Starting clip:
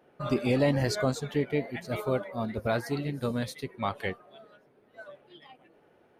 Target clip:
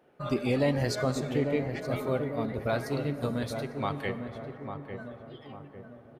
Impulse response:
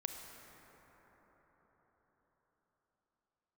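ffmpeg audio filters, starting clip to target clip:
-filter_complex "[0:a]asplit=2[s0][s1];[s1]adelay=849,lowpass=f=1000:p=1,volume=0.501,asplit=2[s2][s3];[s3]adelay=849,lowpass=f=1000:p=1,volume=0.51,asplit=2[s4][s5];[s5]adelay=849,lowpass=f=1000:p=1,volume=0.51,asplit=2[s6][s7];[s7]adelay=849,lowpass=f=1000:p=1,volume=0.51,asplit=2[s8][s9];[s9]adelay=849,lowpass=f=1000:p=1,volume=0.51,asplit=2[s10][s11];[s11]adelay=849,lowpass=f=1000:p=1,volume=0.51[s12];[s0][s2][s4][s6][s8][s10][s12]amix=inputs=7:normalize=0,asplit=2[s13][s14];[1:a]atrim=start_sample=2205[s15];[s14][s15]afir=irnorm=-1:irlink=0,volume=0.75[s16];[s13][s16]amix=inputs=2:normalize=0,volume=0.531"

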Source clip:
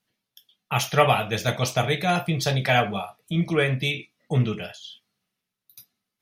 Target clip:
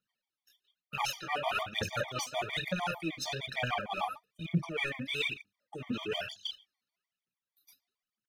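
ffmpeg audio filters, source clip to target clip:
-filter_complex "[0:a]agate=range=0.224:threshold=0.01:ratio=16:detection=peak,atempo=0.75,equalizer=f=490:t=o:w=0.77:g=-3,areverse,acompressor=threshold=0.0316:ratio=20,areverse,asplit=2[s0][s1];[s1]highpass=f=720:p=1,volume=3.55,asoftclip=type=tanh:threshold=0.0841[s2];[s0][s2]amix=inputs=2:normalize=0,lowpass=f=3600:p=1,volume=0.501,aphaser=in_gain=1:out_gain=1:delay=4.1:decay=0.7:speed=1.1:type=triangular,bandreject=f=50:t=h:w=6,bandreject=f=100:t=h:w=6,bandreject=f=150:t=h:w=6,bandreject=f=200:t=h:w=6,afftfilt=real='re*gt(sin(2*PI*6.6*pts/sr)*(1-2*mod(floor(b*sr/1024/610),2)),0)':imag='im*gt(sin(2*PI*6.6*pts/sr)*(1-2*mod(floor(b*sr/1024/610),2)),0)':win_size=1024:overlap=0.75"

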